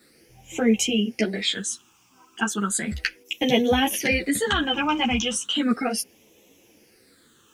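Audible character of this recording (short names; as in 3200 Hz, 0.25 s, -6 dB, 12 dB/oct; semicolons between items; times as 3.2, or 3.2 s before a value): phasing stages 8, 0.35 Hz, lowest notch 540–1400 Hz; a quantiser's noise floor 12-bit, dither none; a shimmering, thickened sound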